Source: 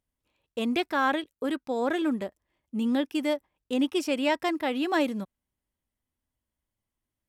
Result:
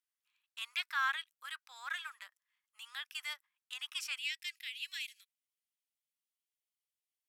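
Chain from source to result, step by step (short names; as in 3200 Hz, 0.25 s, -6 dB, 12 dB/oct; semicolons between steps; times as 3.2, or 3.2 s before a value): steep high-pass 1200 Hz 36 dB/oct, from 4.17 s 2200 Hz; gain -3.5 dB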